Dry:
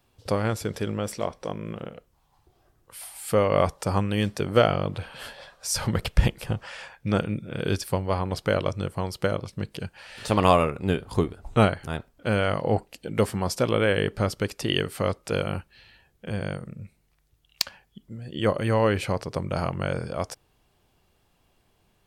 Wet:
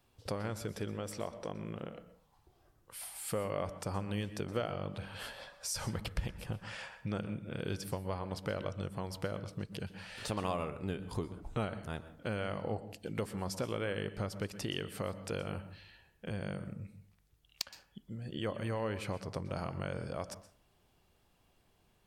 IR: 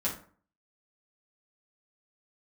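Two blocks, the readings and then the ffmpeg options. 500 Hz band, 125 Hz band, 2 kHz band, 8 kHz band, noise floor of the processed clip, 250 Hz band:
-13.5 dB, -12.0 dB, -12.5 dB, -9.0 dB, -71 dBFS, -12.0 dB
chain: -filter_complex "[0:a]acompressor=threshold=-33dB:ratio=2.5,asplit=2[a][b];[1:a]atrim=start_sample=2205,adelay=117[c];[b][c]afir=irnorm=-1:irlink=0,volume=-19dB[d];[a][d]amix=inputs=2:normalize=0,volume=-4.5dB"

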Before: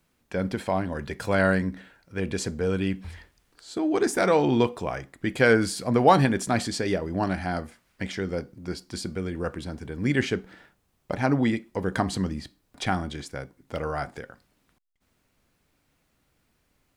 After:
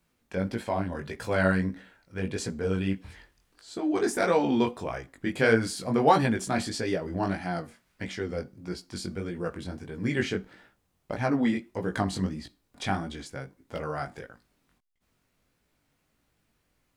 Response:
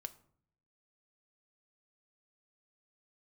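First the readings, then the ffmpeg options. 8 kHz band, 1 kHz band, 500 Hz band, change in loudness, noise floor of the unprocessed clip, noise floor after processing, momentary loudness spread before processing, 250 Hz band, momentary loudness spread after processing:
-3.0 dB, -2.5 dB, -3.0 dB, -2.5 dB, -71 dBFS, -74 dBFS, 16 LU, -2.5 dB, 15 LU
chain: -af "flanger=delay=17:depth=5.1:speed=1.6"

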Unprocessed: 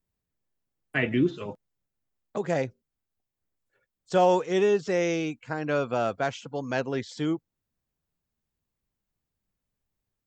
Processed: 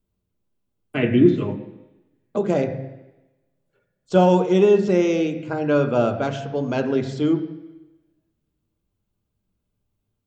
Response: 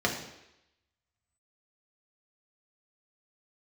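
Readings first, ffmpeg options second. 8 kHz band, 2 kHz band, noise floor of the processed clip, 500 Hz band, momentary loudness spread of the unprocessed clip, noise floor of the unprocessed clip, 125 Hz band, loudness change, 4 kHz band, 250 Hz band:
n/a, +0.5 dB, -77 dBFS, +7.0 dB, 12 LU, under -85 dBFS, +9.5 dB, +7.0 dB, +3.0 dB, +9.5 dB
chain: -filter_complex "[0:a]lowshelf=f=300:g=8,asplit=2[a][b];[1:a]atrim=start_sample=2205,asetrate=37926,aresample=44100,lowpass=4.3k[c];[b][c]afir=irnorm=-1:irlink=0,volume=-13dB[d];[a][d]amix=inputs=2:normalize=0"

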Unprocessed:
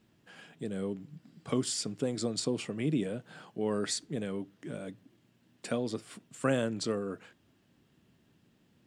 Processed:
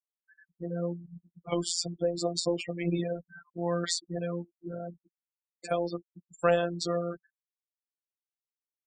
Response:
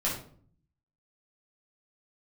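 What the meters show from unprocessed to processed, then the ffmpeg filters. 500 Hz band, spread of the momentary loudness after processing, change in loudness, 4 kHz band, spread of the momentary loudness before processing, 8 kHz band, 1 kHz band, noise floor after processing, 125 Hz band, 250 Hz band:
+4.0 dB, 14 LU, +2.5 dB, +3.0 dB, 15 LU, +1.5 dB, +6.5 dB, under -85 dBFS, +2.0 dB, -1.0 dB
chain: -af "afftfilt=real='re*gte(hypot(re,im),0.0141)':imag='im*gte(hypot(re,im),0.0141)':win_size=1024:overlap=0.75,highpass=100,equalizer=f=170:t=q:w=4:g=-5,equalizer=f=280:t=q:w=4:g=-8,equalizer=f=740:t=q:w=4:g=9,lowpass=f=7.8k:w=0.5412,lowpass=f=7.8k:w=1.3066,afftfilt=real='hypot(re,im)*cos(PI*b)':imag='0':win_size=1024:overlap=0.75,volume=7.5dB"

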